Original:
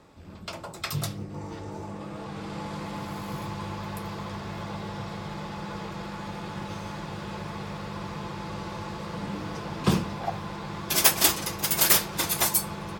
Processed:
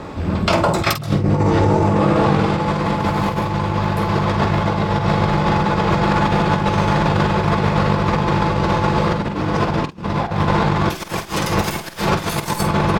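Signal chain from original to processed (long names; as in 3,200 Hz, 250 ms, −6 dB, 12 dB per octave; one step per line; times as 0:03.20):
stylus tracing distortion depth 0.027 ms
low-pass filter 2,400 Hz 6 dB per octave
compressor whose output falls as the input rises −38 dBFS, ratio −0.5
double-tracking delay 48 ms −9.5 dB
boost into a limiter +23 dB
level −3 dB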